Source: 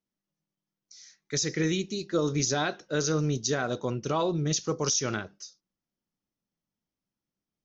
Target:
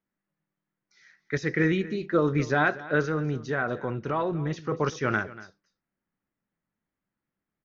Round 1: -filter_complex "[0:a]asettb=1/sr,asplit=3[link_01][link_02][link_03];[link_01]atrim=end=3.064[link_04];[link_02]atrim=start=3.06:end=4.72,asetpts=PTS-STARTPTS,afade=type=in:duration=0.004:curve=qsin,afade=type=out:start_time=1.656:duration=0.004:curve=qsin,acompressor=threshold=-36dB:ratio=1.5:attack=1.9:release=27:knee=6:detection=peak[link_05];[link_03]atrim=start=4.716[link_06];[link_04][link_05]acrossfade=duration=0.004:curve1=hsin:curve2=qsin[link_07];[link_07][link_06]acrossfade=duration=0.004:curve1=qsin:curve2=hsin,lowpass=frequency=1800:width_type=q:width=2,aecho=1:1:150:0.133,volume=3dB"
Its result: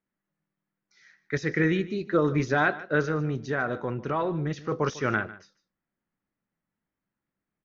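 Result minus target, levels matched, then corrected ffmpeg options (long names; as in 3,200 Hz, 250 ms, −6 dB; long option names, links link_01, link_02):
echo 87 ms early
-filter_complex "[0:a]asettb=1/sr,asplit=3[link_01][link_02][link_03];[link_01]atrim=end=3.064[link_04];[link_02]atrim=start=3.06:end=4.72,asetpts=PTS-STARTPTS,afade=type=in:duration=0.004:curve=qsin,afade=type=out:start_time=1.656:duration=0.004:curve=qsin,acompressor=threshold=-36dB:ratio=1.5:attack=1.9:release=27:knee=6:detection=peak[link_05];[link_03]atrim=start=4.716[link_06];[link_04][link_05]acrossfade=duration=0.004:curve1=hsin:curve2=qsin[link_07];[link_07][link_06]acrossfade=duration=0.004:curve1=qsin:curve2=hsin,lowpass=frequency=1800:width_type=q:width=2,aecho=1:1:237:0.133,volume=3dB"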